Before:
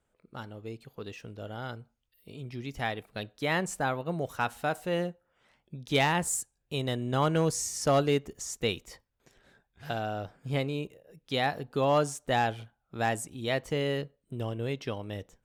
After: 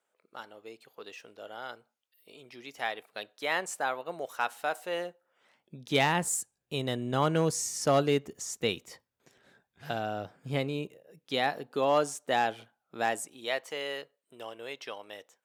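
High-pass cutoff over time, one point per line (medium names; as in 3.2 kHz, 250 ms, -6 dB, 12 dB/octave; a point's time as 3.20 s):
5.04 s 500 Hz
6.01 s 130 Hz
10.76 s 130 Hz
11.71 s 270 Hz
13.00 s 270 Hz
13.66 s 650 Hz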